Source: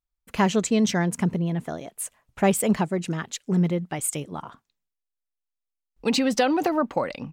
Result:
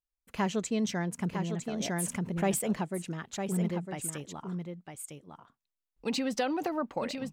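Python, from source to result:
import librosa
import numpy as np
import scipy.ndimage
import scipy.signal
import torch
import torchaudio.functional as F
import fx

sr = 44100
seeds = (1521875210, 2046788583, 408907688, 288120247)

p1 = x + fx.echo_single(x, sr, ms=955, db=-6.5, dry=0)
p2 = fx.env_flatten(p1, sr, amount_pct=50, at=(1.8, 2.59))
y = F.gain(torch.from_numpy(p2), -9.0).numpy()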